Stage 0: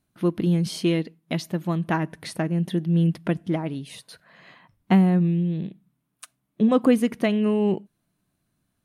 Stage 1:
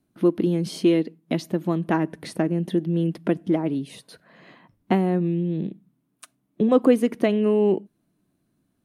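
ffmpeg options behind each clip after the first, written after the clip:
-filter_complex "[0:a]equalizer=f=310:t=o:w=1.9:g=11,acrossover=split=340|1200[a][b][c];[a]acompressor=threshold=-22dB:ratio=6[d];[d][b][c]amix=inputs=3:normalize=0,volume=-2.5dB"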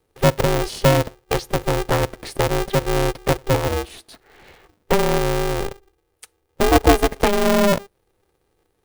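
-af "equalizer=f=1.2k:w=5.2:g=-15,aeval=exprs='val(0)*sgn(sin(2*PI*200*n/s))':c=same,volume=3.5dB"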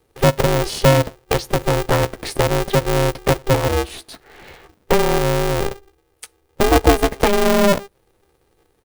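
-filter_complex "[0:a]asplit=2[a][b];[b]adelay=15,volume=-11dB[c];[a][c]amix=inputs=2:normalize=0,asplit=2[d][e];[e]acompressor=threshold=-23dB:ratio=6,volume=2dB[f];[d][f]amix=inputs=2:normalize=0,volume=-1.5dB"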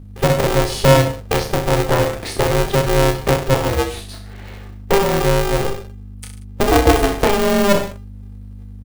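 -af "aeval=exprs='val(0)+0.02*(sin(2*PI*50*n/s)+sin(2*PI*2*50*n/s)/2+sin(2*PI*3*50*n/s)/3+sin(2*PI*4*50*n/s)/4+sin(2*PI*5*50*n/s)/5)':c=same,aecho=1:1:30|63|99.3|139.2|183.2:0.631|0.398|0.251|0.158|0.1,volume=-1dB"

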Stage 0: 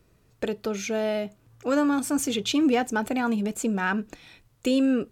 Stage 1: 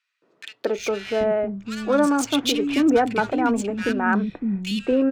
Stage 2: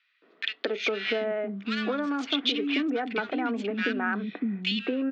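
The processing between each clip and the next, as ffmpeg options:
-filter_complex "[0:a]adynamicsmooth=sensitivity=5:basefreq=2.5k,acrossover=split=250|1900[a][b][c];[b]adelay=220[d];[a]adelay=780[e];[e][d][c]amix=inputs=3:normalize=0,volume=6.5dB"
-af "acompressor=threshold=-28dB:ratio=10,highpass=f=230:w=0.5412,highpass=f=230:w=1.3066,equalizer=f=340:t=q:w=4:g=-5,equalizer=f=550:t=q:w=4:g=-7,equalizer=f=910:t=q:w=4:g=-8,equalizer=f=2k:t=q:w=4:g=4,equalizer=f=3.4k:t=q:w=4:g=4,lowpass=f=4.2k:w=0.5412,lowpass=f=4.2k:w=1.3066,volume=6dB"

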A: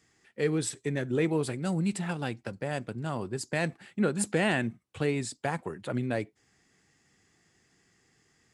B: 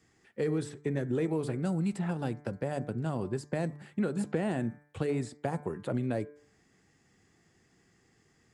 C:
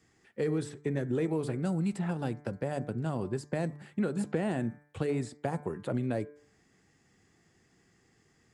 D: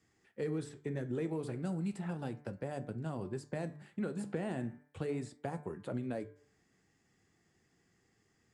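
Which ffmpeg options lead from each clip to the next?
-filter_complex "[0:a]tiltshelf=f=1.3k:g=3.5,bandreject=f=147.1:t=h:w=4,bandreject=f=294.2:t=h:w=4,bandreject=f=441.3:t=h:w=4,bandreject=f=588.4:t=h:w=4,bandreject=f=735.5:t=h:w=4,bandreject=f=882.6:t=h:w=4,bandreject=f=1.0297k:t=h:w=4,bandreject=f=1.1768k:t=h:w=4,bandreject=f=1.3239k:t=h:w=4,bandreject=f=1.471k:t=h:w=4,bandreject=f=1.6181k:t=h:w=4,bandreject=f=1.7652k:t=h:w=4,bandreject=f=1.9123k:t=h:w=4,bandreject=f=2.0594k:t=h:w=4,bandreject=f=2.2065k:t=h:w=4,bandreject=f=2.3536k:t=h:w=4,acrossover=split=790|1900|4800[a][b][c][d];[a]acompressor=threshold=-28dB:ratio=4[e];[b]acompressor=threshold=-45dB:ratio=4[f];[c]acompressor=threshold=-56dB:ratio=4[g];[d]acompressor=threshold=-52dB:ratio=4[h];[e][f][g][h]amix=inputs=4:normalize=0"
-af anull
-af "flanger=delay=9.7:depth=8:regen=-74:speed=0.36:shape=sinusoidal,volume=-2dB"

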